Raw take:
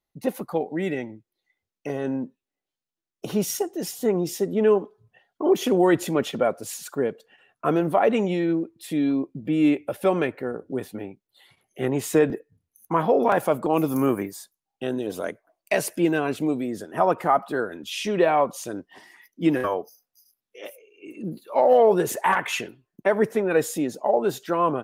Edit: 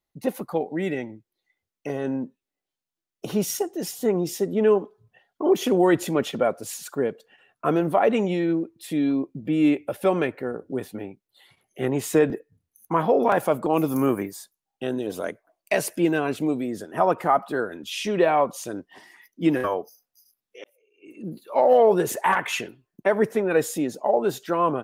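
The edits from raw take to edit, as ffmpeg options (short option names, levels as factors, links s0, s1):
-filter_complex "[0:a]asplit=2[s0][s1];[s0]atrim=end=20.64,asetpts=PTS-STARTPTS,afade=t=out:st=20.636:d=0.004:c=hsin[s2];[s1]atrim=start=20.64,asetpts=PTS-STARTPTS,afade=t=in:d=0.83[s3];[s2][s3]concat=n=2:v=0:a=1"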